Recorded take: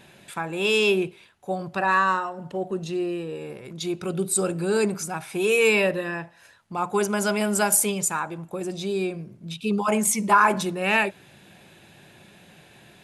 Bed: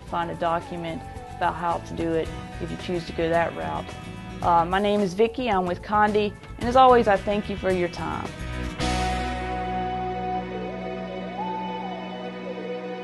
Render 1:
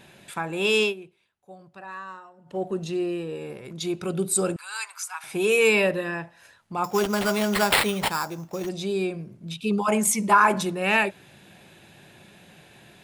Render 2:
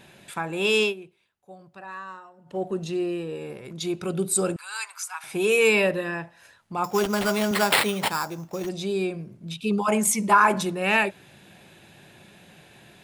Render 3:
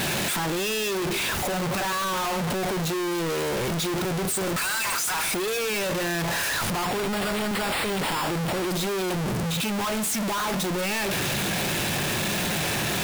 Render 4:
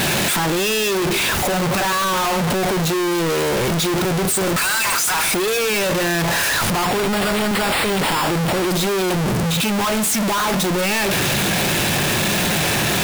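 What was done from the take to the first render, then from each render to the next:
0.82–2.58 s: dip -17.5 dB, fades 0.12 s; 4.56–5.24 s: elliptic high-pass 970 Hz, stop band 80 dB; 6.84–8.69 s: sample-rate reducer 6.2 kHz
7.51–8.13 s: high-pass 130 Hz
one-bit comparator
trim +7.5 dB

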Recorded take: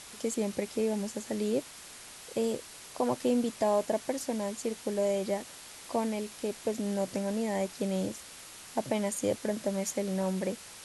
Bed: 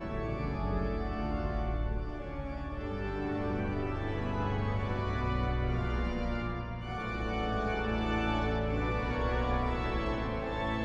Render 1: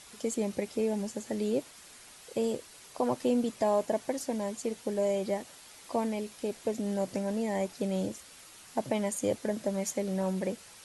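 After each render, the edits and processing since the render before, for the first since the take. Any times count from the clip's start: noise reduction 6 dB, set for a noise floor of -49 dBFS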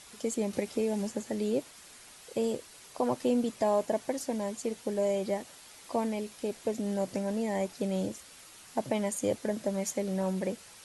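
0.53–1.23 s: three bands compressed up and down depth 70%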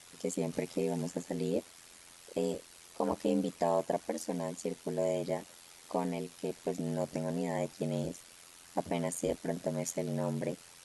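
ring modulator 43 Hz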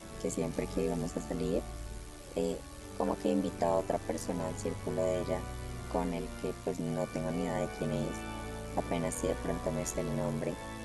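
add bed -10 dB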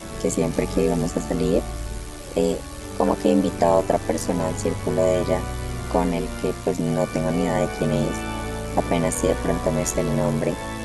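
trim +12 dB

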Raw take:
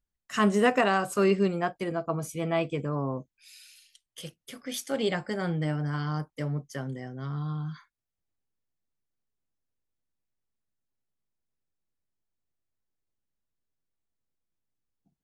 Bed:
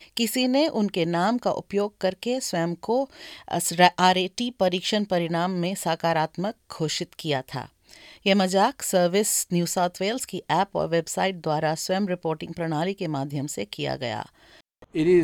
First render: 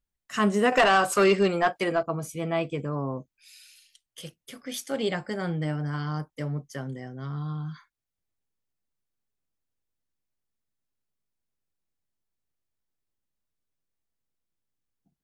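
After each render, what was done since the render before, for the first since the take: 0.72–2.03 s: overdrive pedal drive 16 dB, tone 7 kHz, clips at -9.5 dBFS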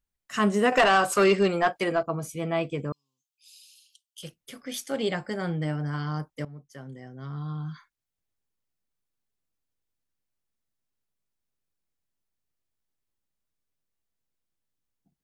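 2.92–4.23 s: elliptic high-pass 2.9 kHz, stop band 50 dB; 6.45–7.67 s: fade in, from -15.5 dB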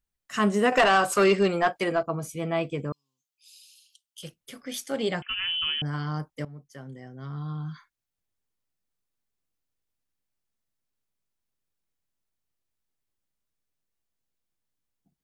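5.22–5.82 s: frequency inversion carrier 3.2 kHz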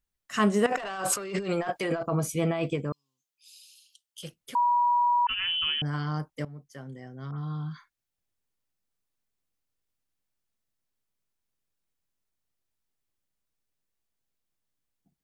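0.66–2.76 s: compressor with a negative ratio -30 dBFS; 4.55–5.27 s: bleep 966 Hz -20 dBFS; 7.31–7.71 s: phase dispersion highs, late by 83 ms, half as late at 2.8 kHz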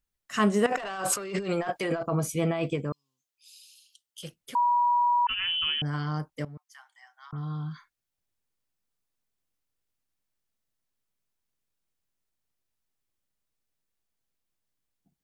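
6.57–7.33 s: steep high-pass 800 Hz 72 dB/octave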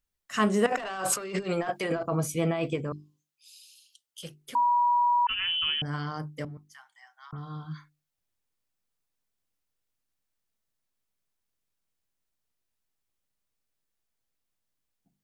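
hum notches 50/100/150/200/250/300/350/400 Hz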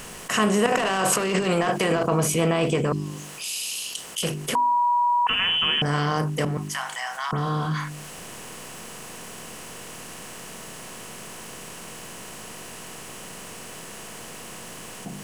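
spectral levelling over time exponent 0.6; level flattener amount 50%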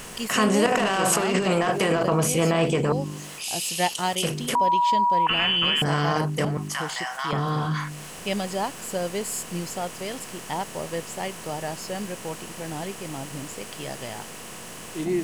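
add bed -7.5 dB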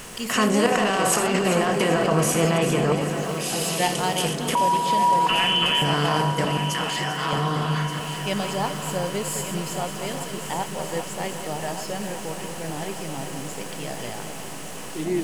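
chunks repeated in reverse 129 ms, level -8 dB; multi-head delay 392 ms, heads first and third, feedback 69%, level -12 dB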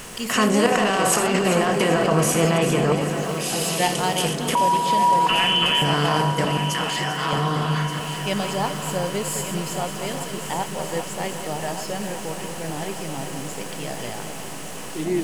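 trim +1.5 dB

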